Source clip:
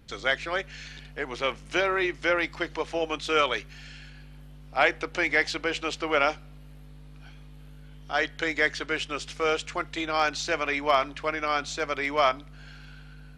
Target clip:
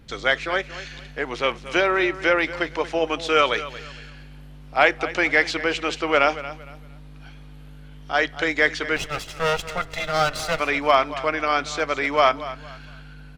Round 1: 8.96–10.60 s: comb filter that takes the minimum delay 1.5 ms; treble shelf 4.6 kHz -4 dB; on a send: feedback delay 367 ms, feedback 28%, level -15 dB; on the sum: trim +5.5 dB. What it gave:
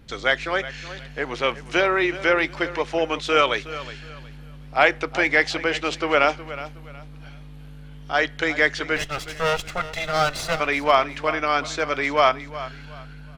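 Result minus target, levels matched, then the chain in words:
echo 137 ms late
8.96–10.60 s: comb filter that takes the minimum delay 1.5 ms; treble shelf 4.6 kHz -4 dB; on a send: feedback delay 230 ms, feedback 28%, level -15 dB; on the sum: trim +5.5 dB

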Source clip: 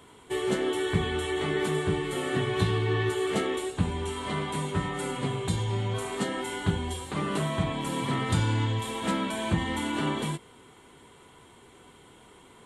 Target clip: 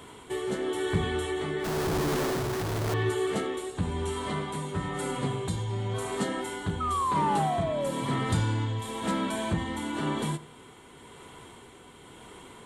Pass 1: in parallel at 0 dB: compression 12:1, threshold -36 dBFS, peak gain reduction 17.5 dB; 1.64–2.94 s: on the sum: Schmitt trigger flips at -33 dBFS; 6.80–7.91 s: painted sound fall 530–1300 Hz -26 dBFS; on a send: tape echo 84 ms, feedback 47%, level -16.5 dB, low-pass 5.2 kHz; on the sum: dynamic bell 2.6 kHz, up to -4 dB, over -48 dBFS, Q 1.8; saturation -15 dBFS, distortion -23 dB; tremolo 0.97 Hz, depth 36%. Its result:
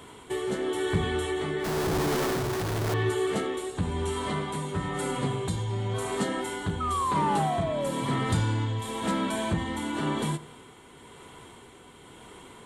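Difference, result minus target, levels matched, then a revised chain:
compression: peak gain reduction -8.5 dB
in parallel at 0 dB: compression 12:1, threshold -45.5 dBFS, peak gain reduction 26 dB; 1.64–2.94 s: on the sum: Schmitt trigger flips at -33 dBFS; 6.80–7.91 s: painted sound fall 530–1300 Hz -26 dBFS; on a send: tape echo 84 ms, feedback 47%, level -16.5 dB, low-pass 5.2 kHz; on the sum: dynamic bell 2.6 kHz, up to -4 dB, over -48 dBFS, Q 1.8; saturation -15 dBFS, distortion -24 dB; tremolo 0.97 Hz, depth 36%

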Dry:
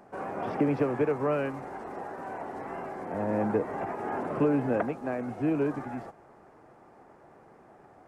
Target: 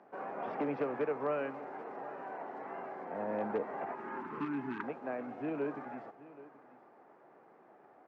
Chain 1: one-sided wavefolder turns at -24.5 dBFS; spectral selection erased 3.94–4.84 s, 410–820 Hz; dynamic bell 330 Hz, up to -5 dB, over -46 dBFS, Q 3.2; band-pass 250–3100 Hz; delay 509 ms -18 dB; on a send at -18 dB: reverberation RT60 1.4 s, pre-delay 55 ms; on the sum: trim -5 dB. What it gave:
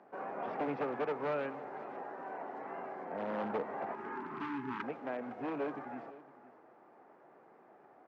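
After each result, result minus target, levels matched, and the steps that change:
one-sided wavefolder: distortion +14 dB; echo 270 ms early
change: one-sided wavefolder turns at -18.5 dBFS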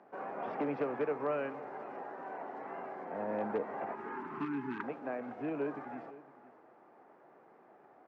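echo 270 ms early
change: delay 779 ms -18 dB

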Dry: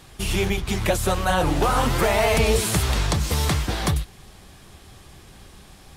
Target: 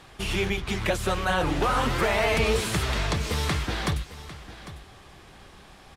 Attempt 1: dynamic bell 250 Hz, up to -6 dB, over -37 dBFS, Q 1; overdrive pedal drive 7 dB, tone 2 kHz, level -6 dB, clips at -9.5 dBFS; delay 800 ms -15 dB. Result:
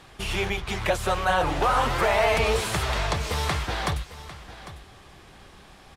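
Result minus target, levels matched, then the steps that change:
250 Hz band -5.0 dB
change: dynamic bell 760 Hz, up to -6 dB, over -37 dBFS, Q 1

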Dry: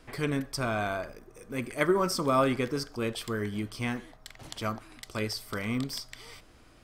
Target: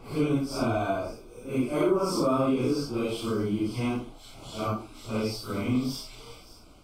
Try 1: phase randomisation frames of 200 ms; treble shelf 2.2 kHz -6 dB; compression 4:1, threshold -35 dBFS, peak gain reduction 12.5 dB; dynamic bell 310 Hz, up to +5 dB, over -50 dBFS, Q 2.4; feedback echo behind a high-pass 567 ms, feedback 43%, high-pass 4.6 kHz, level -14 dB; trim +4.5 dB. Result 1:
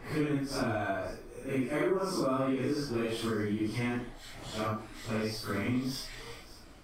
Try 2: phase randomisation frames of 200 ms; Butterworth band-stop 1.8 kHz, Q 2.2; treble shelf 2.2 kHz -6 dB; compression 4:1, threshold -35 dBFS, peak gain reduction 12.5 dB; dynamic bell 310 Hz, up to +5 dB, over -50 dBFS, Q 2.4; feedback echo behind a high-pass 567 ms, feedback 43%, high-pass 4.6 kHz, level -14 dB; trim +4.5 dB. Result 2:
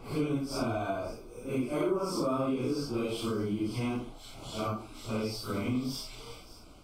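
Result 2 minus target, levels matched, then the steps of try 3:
compression: peak gain reduction +5.5 dB
phase randomisation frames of 200 ms; Butterworth band-stop 1.8 kHz, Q 2.2; treble shelf 2.2 kHz -6 dB; compression 4:1, threshold -27.5 dBFS, peak gain reduction 7 dB; dynamic bell 310 Hz, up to +5 dB, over -50 dBFS, Q 2.4; feedback echo behind a high-pass 567 ms, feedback 43%, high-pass 4.6 kHz, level -14 dB; trim +4.5 dB

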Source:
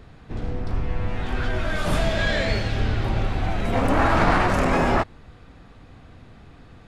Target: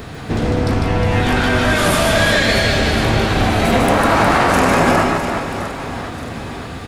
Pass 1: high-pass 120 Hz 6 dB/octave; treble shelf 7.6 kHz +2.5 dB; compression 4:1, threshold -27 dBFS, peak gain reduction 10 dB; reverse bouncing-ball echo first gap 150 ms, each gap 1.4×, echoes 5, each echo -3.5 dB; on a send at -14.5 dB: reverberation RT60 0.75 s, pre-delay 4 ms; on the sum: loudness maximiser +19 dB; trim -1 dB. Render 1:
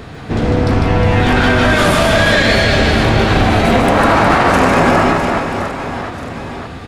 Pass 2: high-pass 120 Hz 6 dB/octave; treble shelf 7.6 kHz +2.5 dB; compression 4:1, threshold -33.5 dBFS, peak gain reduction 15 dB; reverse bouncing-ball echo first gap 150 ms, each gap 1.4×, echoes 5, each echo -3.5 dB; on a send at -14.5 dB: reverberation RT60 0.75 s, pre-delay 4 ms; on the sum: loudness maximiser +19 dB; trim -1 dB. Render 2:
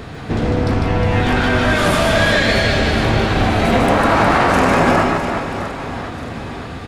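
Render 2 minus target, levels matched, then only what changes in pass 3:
8 kHz band -4.5 dB
change: treble shelf 7.6 kHz +13 dB

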